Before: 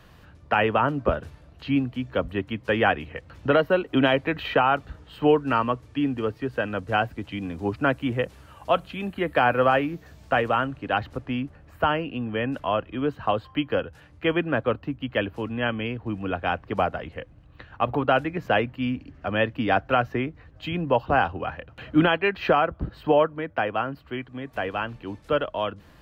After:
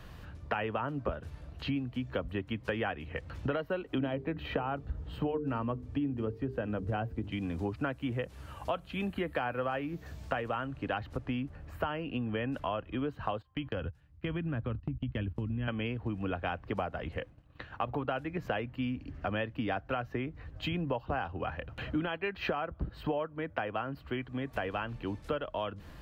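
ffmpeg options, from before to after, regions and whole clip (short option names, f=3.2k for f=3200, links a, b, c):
-filter_complex "[0:a]asettb=1/sr,asplit=3[a][b][c];[a]atrim=end=3.984[d];[b]atrim=start=3.98:end=7.32,asetpts=PTS-STARTPTS,afade=t=in:d=0.004:c=qsin,afade=t=out:st=3.336:d=0.004:c=qsin,tiltshelf=f=740:g=6.5,bandreject=f=50:t=h:w=6,bandreject=f=100:t=h:w=6,bandreject=f=150:t=h:w=6,bandreject=f=200:t=h:w=6,bandreject=f=250:t=h:w=6,bandreject=f=300:t=h:w=6,bandreject=f=350:t=h:w=6,bandreject=f=400:t=h:w=6,bandreject=f=450:t=h:w=6[e];[c]atrim=start=7.316[f];[d][e]acrossfade=d=0.004:c1=hsin:c2=qsin[g];[g][f]acrossfade=d=0.004:c1=qsin:c2=hsin,asettb=1/sr,asplit=3[h][i][j];[h]atrim=end=13.374[k];[i]atrim=start=13.37:end=15.68,asetpts=PTS-STARTPTS,afade=t=in:d=0.004:c=qsin,afade=t=out:st=2.306:d=0.004:c=qsin,agate=range=-21dB:threshold=-41dB:ratio=16:release=100:detection=peak,asubboost=boost=12:cutoff=210,acompressor=threshold=-34dB:ratio=2.5:attack=3.2:release=140:knee=1:detection=peak[l];[j]atrim=start=15.676[m];[k][l]acrossfade=d=0.004:c1=hsin:c2=qsin[n];[n][m]acrossfade=d=0.004:c1=qsin:c2=hsin,asettb=1/sr,asplit=3[o][p][q];[o]atrim=end=17.184[r];[p]atrim=start=17.18:end=17.83,asetpts=PTS-STARTPTS,afade=t=in:d=0.004:c=qsin,afade=t=out:st=0.646:d=0.004:c=qsin,lowshelf=f=100:g=-11.5,agate=range=-33dB:threshold=-52dB:ratio=3:release=100:detection=peak[s];[q]atrim=start=17.826[t];[r][s]acrossfade=d=0.004:c1=hsin:c2=qsin[u];[u][t]acrossfade=d=0.004:c1=qsin:c2=hsin,lowshelf=f=98:g=7,acompressor=threshold=-31dB:ratio=6"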